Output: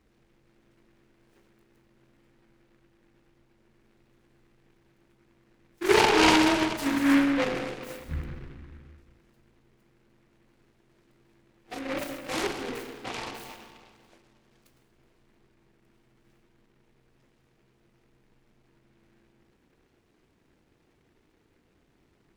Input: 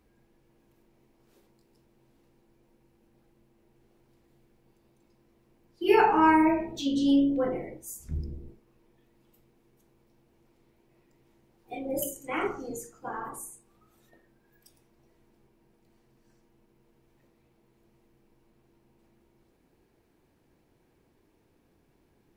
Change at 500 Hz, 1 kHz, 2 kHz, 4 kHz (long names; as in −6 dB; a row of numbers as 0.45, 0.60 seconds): +0.5, −1.5, +6.0, +11.5 decibels